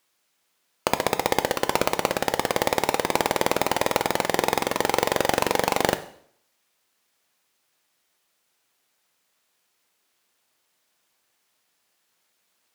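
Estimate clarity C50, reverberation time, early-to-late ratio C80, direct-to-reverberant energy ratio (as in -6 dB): 14.5 dB, 0.65 s, 18.0 dB, 10.0 dB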